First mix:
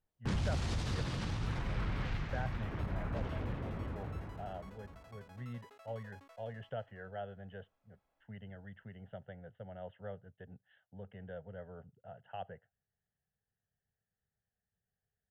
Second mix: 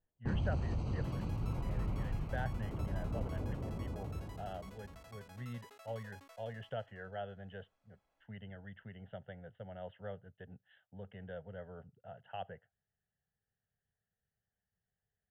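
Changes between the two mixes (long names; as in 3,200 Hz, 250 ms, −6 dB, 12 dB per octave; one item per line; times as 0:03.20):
first sound: add moving average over 25 samples
master: add high-shelf EQ 3,600 Hz +9 dB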